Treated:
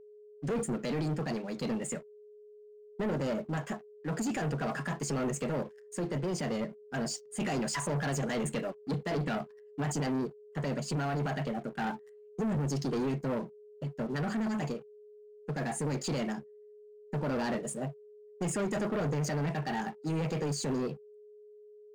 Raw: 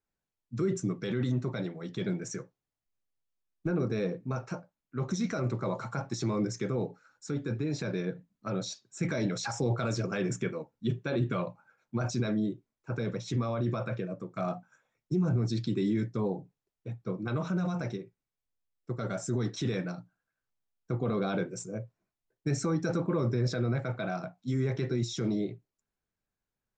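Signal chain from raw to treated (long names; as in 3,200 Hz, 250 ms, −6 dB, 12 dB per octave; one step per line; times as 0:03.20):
leveller curve on the samples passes 3
speed change +22%
steady tone 420 Hz −43 dBFS
level −8 dB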